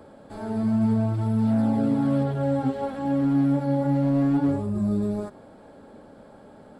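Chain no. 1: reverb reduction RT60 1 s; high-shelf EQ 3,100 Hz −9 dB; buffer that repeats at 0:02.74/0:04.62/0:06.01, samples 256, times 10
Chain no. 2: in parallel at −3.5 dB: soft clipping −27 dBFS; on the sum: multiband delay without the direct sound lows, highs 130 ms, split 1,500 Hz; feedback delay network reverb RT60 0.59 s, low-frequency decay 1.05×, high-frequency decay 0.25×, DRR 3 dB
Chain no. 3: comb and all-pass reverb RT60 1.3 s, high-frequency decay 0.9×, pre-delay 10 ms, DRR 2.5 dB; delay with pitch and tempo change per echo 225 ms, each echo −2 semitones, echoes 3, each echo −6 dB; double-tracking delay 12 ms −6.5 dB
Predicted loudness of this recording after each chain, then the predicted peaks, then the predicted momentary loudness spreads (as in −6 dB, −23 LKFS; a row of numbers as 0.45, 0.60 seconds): −27.0, −13.0, −21.0 LKFS; −15.5, −3.0, −7.5 dBFS; 7, 14, 9 LU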